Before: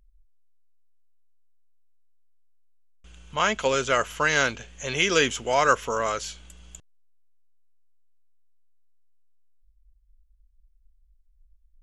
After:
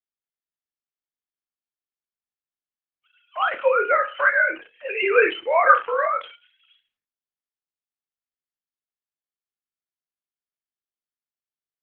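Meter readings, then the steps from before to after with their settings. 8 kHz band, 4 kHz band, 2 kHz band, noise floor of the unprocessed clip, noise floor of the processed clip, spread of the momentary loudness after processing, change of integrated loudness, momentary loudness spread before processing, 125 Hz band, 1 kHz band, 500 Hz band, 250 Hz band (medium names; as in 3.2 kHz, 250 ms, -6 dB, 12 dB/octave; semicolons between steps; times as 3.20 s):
under -40 dB, -8.0 dB, +5.0 dB, -62 dBFS, under -85 dBFS, 12 LU, +4.0 dB, 11 LU, under -30 dB, +4.5 dB, +4.0 dB, -5.5 dB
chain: formants replaced by sine waves; flutter echo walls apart 4.8 m, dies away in 0.26 s; trim +2.5 dB; Opus 8 kbps 48 kHz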